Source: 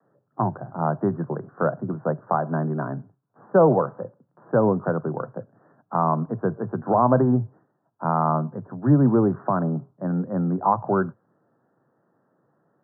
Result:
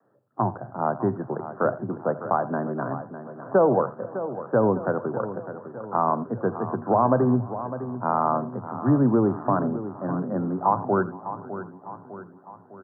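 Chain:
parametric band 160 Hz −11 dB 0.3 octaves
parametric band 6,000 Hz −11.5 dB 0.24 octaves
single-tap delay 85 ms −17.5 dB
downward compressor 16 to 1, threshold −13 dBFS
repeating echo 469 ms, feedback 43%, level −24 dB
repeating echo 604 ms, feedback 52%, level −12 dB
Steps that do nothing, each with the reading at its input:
parametric band 6,000 Hz: nothing at its input above 1,600 Hz

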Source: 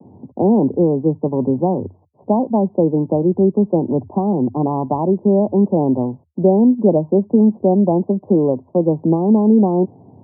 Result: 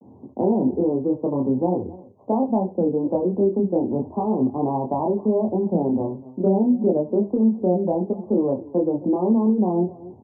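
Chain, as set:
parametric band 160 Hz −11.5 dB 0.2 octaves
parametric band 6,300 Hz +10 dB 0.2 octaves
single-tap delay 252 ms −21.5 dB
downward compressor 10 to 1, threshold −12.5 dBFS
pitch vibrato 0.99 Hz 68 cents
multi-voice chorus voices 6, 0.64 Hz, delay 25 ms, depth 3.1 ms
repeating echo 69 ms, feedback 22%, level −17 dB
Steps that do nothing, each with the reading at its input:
parametric band 6,300 Hz: nothing at its input above 1,000 Hz

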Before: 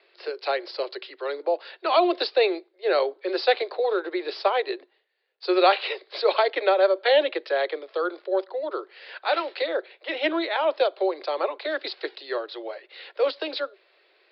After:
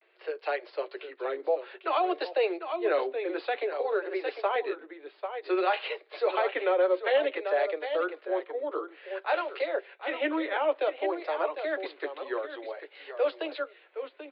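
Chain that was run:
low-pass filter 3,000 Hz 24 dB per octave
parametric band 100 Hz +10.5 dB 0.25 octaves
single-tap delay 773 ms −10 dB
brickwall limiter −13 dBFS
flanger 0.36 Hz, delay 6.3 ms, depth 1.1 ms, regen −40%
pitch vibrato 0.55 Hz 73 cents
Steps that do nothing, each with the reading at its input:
parametric band 100 Hz: nothing at its input below 270 Hz

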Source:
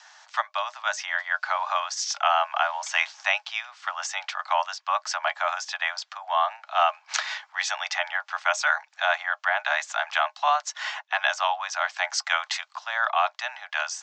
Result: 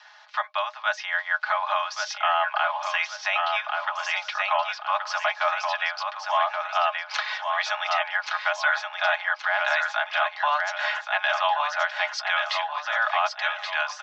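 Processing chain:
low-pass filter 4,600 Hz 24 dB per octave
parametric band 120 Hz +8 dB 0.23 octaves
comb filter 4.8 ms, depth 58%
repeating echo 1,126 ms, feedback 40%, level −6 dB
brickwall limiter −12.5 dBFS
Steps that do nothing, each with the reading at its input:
parametric band 120 Hz: nothing at its input below 510 Hz

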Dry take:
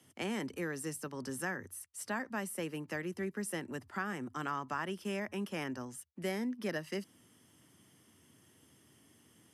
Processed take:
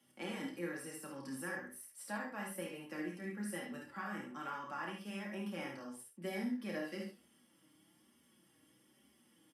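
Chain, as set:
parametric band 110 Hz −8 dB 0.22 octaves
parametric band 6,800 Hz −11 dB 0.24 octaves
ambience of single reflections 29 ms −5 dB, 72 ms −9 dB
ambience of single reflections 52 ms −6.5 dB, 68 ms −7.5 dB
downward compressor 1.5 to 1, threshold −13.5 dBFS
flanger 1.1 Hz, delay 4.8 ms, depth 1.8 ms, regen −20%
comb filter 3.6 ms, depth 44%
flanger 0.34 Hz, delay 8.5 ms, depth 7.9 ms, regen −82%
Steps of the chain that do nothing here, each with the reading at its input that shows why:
downward compressor, threshold −13.5 dBFS: peak of its input −21.5 dBFS

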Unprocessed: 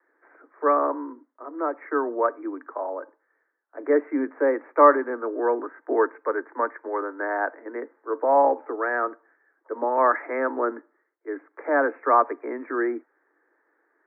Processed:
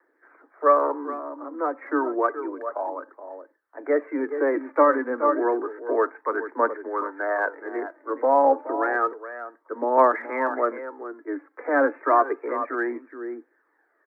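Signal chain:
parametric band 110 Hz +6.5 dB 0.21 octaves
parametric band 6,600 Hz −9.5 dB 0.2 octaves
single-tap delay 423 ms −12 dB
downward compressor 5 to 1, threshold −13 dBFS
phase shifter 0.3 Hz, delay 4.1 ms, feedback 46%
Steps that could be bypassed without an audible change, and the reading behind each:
parametric band 110 Hz: nothing at its input below 230 Hz
parametric band 6,600 Hz: nothing at its input above 2,000 Hz

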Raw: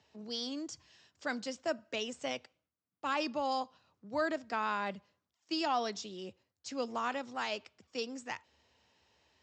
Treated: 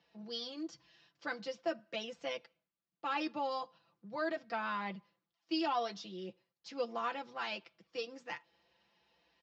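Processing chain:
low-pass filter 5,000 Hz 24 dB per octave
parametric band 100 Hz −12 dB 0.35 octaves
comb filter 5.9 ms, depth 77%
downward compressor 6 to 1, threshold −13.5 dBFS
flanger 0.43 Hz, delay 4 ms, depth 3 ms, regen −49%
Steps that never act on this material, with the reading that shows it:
downward compressor, threshold −13.5 dBFS: peak of its input −20.0 dBFS

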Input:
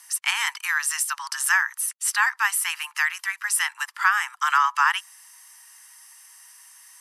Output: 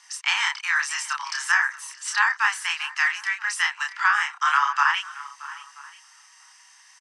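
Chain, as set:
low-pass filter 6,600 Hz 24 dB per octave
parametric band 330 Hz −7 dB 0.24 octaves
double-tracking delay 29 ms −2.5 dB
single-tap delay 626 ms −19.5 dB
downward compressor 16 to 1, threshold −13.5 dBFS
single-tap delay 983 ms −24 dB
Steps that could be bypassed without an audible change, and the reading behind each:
parametric band 330 Hz: nothing at its input below 720 Hz

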